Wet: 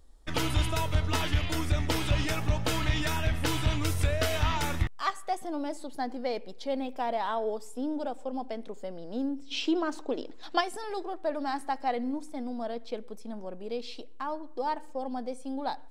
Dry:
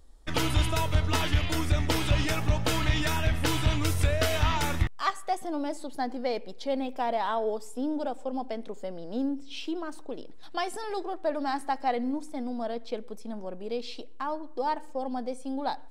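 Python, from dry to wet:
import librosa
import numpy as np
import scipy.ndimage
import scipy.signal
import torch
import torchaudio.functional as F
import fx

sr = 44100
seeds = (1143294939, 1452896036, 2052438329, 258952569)

y = fx.spec_box(x, sr, start_s=9.52, length_s=1.09, low_hz=230.0, high_hz=7900.0, gain_db=8)
y = y * 10.0 ** (-2.0 / 20.0)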